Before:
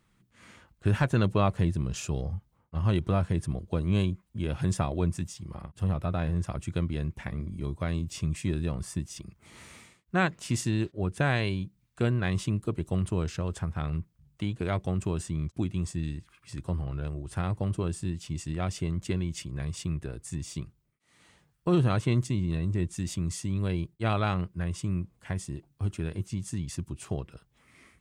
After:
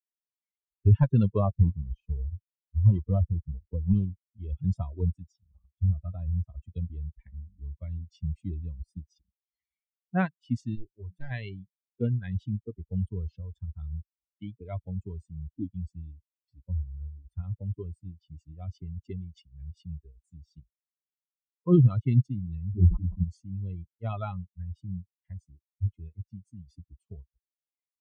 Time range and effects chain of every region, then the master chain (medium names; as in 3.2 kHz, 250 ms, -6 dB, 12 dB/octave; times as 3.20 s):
1.39–4.12 s: block-companded coder 3-bit + low-pass 1.5 kHz 6 dB/octave
10.75–11.31 s: hum notches 60/120/180 Hz + hard clipper -27.5 dBFS
22.71–23.24 s: brick-wall FIR low-pass 1.3 kHz + doubling 23 ms -2 dB + decay stretcher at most 63 dB/s
whole clip: expander on every frequency bin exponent 3; low-pass 4.1 kHz 12 dB/octave; tilt EQ -3.5 dB/octave